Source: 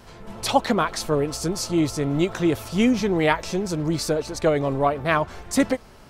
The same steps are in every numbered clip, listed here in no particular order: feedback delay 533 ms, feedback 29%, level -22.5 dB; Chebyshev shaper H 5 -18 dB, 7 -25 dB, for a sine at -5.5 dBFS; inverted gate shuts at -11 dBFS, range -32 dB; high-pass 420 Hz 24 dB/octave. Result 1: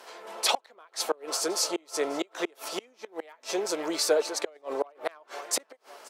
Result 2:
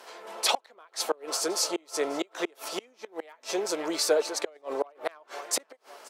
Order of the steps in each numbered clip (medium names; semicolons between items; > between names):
Chebyshev shaper > feedback delay > inverted gate > high-pass; feedback delay > Chebyshev shaper > inverted gate > high-pass